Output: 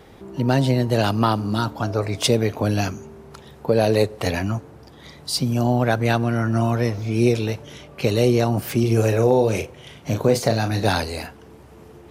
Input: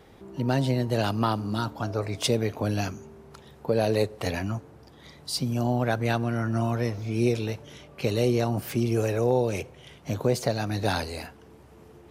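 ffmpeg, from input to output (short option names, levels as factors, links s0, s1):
-filter_complex "[0:a]asettb=1/sr,asplit=3[s0][s1][s2];[s0]atrim=end=8.804[s3];[s1]atrim=start=8.8:end=10.89,asetpts=PTS-STARTPTS,afade=t=in:d=0.004:c=qsin,afade=t=out:st=2.086:d=0.004:c=qsin,asplit=2[s4][s5];[s5]adelay=36,volume=0.398[s6];[s4][s6]amix=inputs=2:normalize=0,atrim=end_sample=92169[s7];[s2]atrim=start=10.886[s8];[s3][s7]acrossfade=d=0.004:c1=hsin:c2=qsin[s9];[s9][s8]acrossfade=d=0.004:c1=qsin:c2=hsin,volume=2"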